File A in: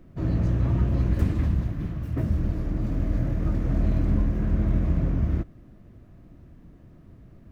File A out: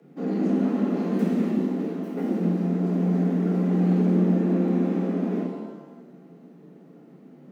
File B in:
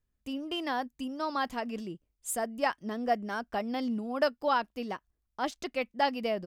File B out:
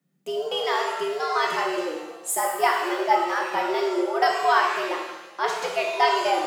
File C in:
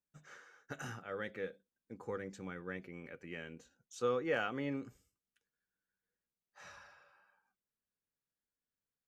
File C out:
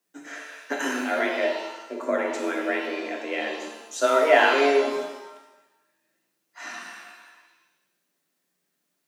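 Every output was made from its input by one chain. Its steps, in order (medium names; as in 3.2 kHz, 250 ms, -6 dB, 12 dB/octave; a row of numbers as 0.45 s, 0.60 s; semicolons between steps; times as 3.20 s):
frequency shift +140 Hz; pitch-shifted reverb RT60 1 s, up +7 st, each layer -8 dB, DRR 0 dB; normalise loudness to -24 LUFS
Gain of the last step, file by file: -3.5 dB, +5.5 dB, +14.5 dB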